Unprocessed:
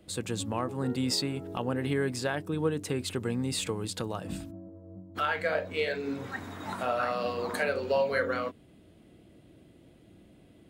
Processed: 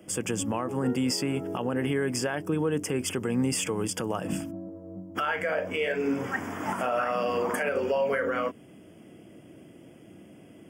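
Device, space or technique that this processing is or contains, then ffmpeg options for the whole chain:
PA system with an anti-feedback notch: -af "highpass=140,asuperstop=centerf=4000:order=8:qfactor=2.8,alimiter=level_in=2dB:limit=-24dB:level=0:latency=1:release=95,volume=-2dB,volume=7.5dB"

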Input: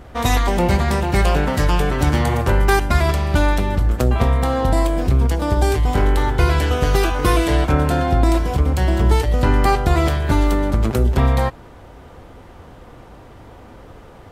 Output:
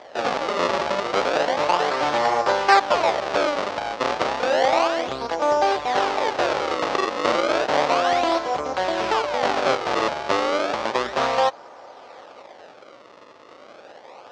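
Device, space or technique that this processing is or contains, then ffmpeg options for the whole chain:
circuit-bent sampling toy: -af "acrusher=samples=32:mix=1:aa=0.000001:lfo=1:lforange=51.2:lforate=0.32,highpass=510,equalizer=f=570:t=q:w=4:g=7,equalizer=f=820:t=q:w=4:g=6,equalizer=f=1.2k:t=q:w=4:g=4,lowpass=f=5.6k:w=0.5412,lowpass=f=5.6k:w=1.3066"

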